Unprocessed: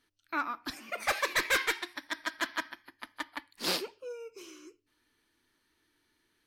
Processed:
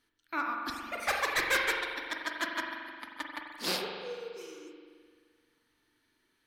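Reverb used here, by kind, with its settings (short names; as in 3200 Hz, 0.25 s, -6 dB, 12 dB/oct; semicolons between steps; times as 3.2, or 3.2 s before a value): spring tank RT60 1.9 s, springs 43 ms, chirp 55 ms, DRR 1.5 dB; gain -1.5 dB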